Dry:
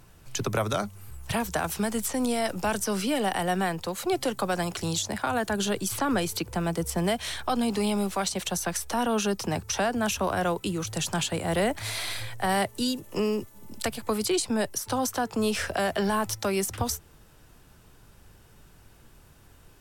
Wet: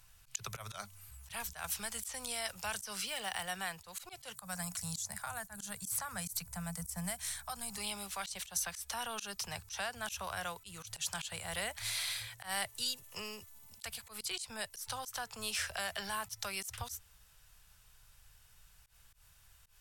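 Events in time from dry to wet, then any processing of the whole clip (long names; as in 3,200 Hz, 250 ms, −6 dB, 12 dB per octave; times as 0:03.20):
0:03.04–0:03.48: running median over 3 samples
0:04.35–0:07.78: drawn EQ curve 110 Hz 0 dB, 180 Hz +9 dB, 320 Hz −14 dB, 660 Hz −2 dB, 2,000 Hz −4 dB, 3,000 Hz −12 dB, 8,200 Hz +4 dB
whole clip: guitar amp tone stack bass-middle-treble 10-0-10; volume swells 107 ms; level −2 dB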